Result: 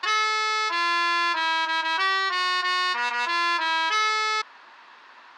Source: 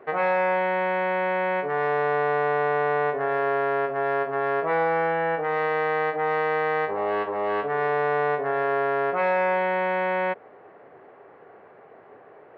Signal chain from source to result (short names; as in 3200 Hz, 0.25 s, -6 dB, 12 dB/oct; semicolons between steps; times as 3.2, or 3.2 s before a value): speed mistake 33 rpm record played at 78 rpm